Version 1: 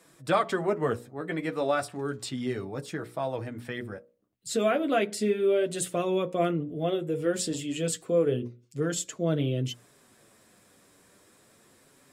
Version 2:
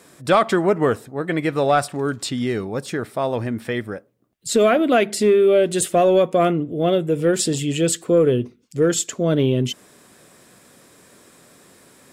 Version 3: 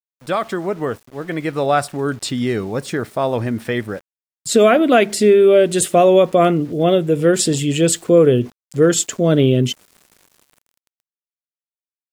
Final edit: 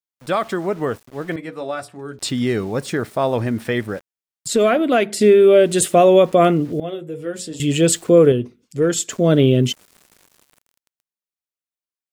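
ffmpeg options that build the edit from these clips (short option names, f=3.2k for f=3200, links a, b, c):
-filter_complex "[0:a]asplit=2[a][b];[1:a]asplit=2[c][d];[2:a]asplit=5[e][f][g][h][i];[e]atrim=end=1.362[j];[a]atrim=start=1.358:end=2.192[k];[f]atrim=start=2.188:end=4.482[l];[c]atrim=start=4.478:end=5.212[m];[g]atrim=start=5.208:end=6.802[n];[b]atrim=start=6.798:end=7.602[o];[h]atrim=start=7.598:end=8.322[p];[d]atrim=start=8.318:end=9.102[q];[i]atrim=start=9.098[r];[j][k]acrossfade=d=0.004:c1=hsin:c2=hsin[s];[s][l]acrossfade=d=0.004:c1=hsin:c2=hsin[t];[t][m]acrossfade=d=0.004:c1=hsin:c2=hsin[u];[u][n]acrossfade=d=0.004:c1=hsin:c2=hsin[v];[v][o]acrossfade=d=0.004:c1=hsin:c2=hsin[w];[w][p]acrossfade=d=0.004:c1=hsin:c2=hsin[x];[x][q]acrossfade=d=0.004:c1=hsin:c2=hsin[y];[y][r]acrossfade=d=0.004:c1=hsin:c2=hsin"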